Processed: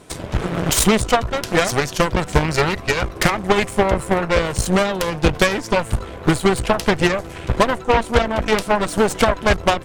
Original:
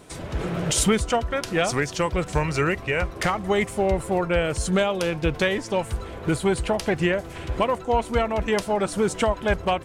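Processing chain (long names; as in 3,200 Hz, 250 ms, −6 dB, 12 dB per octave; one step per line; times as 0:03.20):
transient designer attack +6 dB, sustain +2 dB
harmonic generator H 8 −14 dB, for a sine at −4.5 dBFS
level +2 dB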